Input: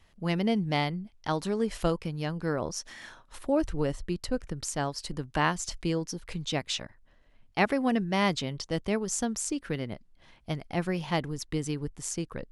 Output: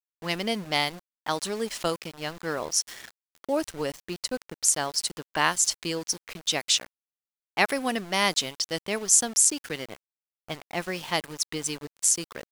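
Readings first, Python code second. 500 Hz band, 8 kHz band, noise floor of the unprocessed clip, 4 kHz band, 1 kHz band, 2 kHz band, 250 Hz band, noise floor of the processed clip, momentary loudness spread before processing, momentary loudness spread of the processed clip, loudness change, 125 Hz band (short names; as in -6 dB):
0.0 dB, +13.5 dB, -61 dBFS, +8.5 dB, +2.0 dB, +5.0 dB, -4.5 dB, under -85 dBFS, 10 LU, 13 LU, +4.5 dB, -8.5 dB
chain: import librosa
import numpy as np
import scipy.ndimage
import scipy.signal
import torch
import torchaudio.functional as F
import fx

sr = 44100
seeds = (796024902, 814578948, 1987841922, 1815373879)

y = fx.riaa(x, sr, side='recording')
y = fx.env_lowpass(y, sr, base_hz=1100.0, full_db=-26.0)
y = np.where(np.abs(y) >= 10.0 ** (-40.5 / 20.0), y, 0.0)
y = y * librosa.db_to_amplitude(2.5)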